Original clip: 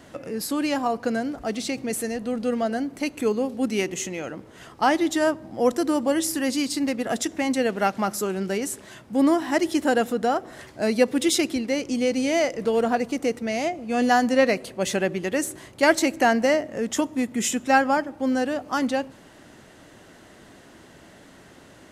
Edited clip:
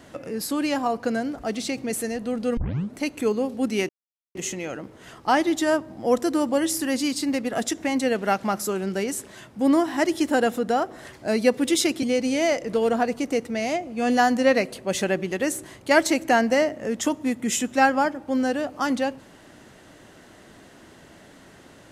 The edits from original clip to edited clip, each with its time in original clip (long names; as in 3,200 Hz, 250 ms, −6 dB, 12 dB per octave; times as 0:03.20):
0:02.57: tape start 0.39 s
0:03.89: splice in silence 0.46 s
0:11.57–0:11.95: remove